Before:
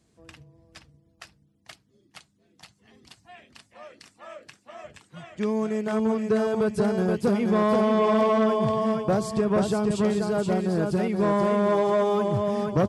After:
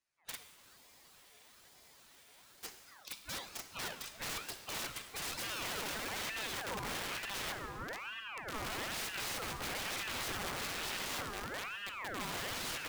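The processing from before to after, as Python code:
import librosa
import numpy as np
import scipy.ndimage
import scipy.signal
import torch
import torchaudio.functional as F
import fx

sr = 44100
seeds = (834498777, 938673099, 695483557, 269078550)

y = fx.noise_reduce_blind(x, sr, reduce_db=26)
y = fx.env_lowpass_down(y, sr, base_hz=960.0, full_db=-21.5)
y = fx.highpass(y, sr, hz=700.0, slope=6)
y = fx.peak_eq(y, sr, hz=2800.0, db=7.0, octaves=1.0)
y = fx.over_compress(y, sr, threshold_db=-35.0, ratio=-0.5)
y = (np.mod(10.0 ** (36.0 / 20.0) * y + 1.0, 2.0) - 1.0) / 10.0 ** (36.0 / 20.0)
y = fx.rev_plate(y, sr, seeds[0], rt60_s=2.0, hf_ratio=0.9, predelay_ms=0, drr_db=7.0)
y = fx.spec_freeze(y, sr, seeds[1], at_s=0.57, hold_s=2.06)
y = fx.ring_lfo(y, sr, carrier_hz=1400.0, swing_pct=60, hz=1.1)
y = y * 10.0 ** (3.5 / 20.0)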